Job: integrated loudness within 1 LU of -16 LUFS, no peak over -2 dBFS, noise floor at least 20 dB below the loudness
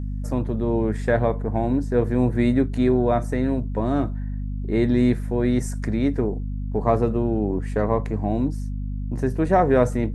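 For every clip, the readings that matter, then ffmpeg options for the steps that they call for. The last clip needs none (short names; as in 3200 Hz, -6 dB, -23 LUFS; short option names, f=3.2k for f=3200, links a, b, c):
hum 50 Hz; harmonics up to 250 Hz; hum level -25 dBFS; loudness -23.0 LUFS; peak -5.0 dBFS; loudness target -16.0 LUFS
-> -af "bandreject=f=50:t=h:w=4,bandreject=f=100:t=h:w=4,bandreject=f=150:t=h:w=4,bandreject=f=200:t=h:w=4,bandreject=f=250:t=h:w=4"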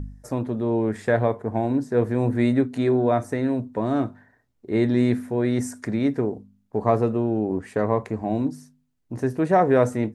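hum none; loudness -23.5 LUFS; peak -5.5 dBFS; loudness target -16.0 LUFS
-> -af "volume=7.5dB,alimiter=limit=-2dB:level=0:latency=1"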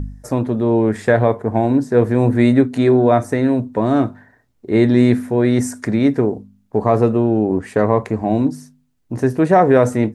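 loudness -16.5 LUFS; peak -2.0 dBFS; noise floor -60 dBFS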